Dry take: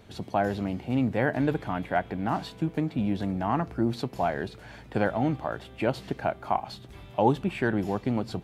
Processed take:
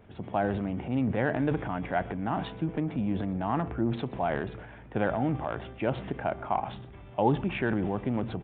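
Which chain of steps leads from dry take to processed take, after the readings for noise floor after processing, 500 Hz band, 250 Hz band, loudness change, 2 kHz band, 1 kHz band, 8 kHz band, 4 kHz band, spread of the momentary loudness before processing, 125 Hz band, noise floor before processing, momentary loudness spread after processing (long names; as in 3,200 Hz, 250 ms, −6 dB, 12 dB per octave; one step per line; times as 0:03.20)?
−48 dBFS, −2.0 dB, −1.5 dB, −2.0 dB, −2.0 dB, −2.0 dB, can't be measured, −4.0 dB, 7 LU, −1.0 dB, −48 dBFS, 6 LU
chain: adaptive Wiener filter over 9 samples
transient designer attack 0 dB, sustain +8 dB
on a send: single-tap delay 125 ms −21.5 dB
on the sum: downsampling to 8,000 Hz
level −2.5 dB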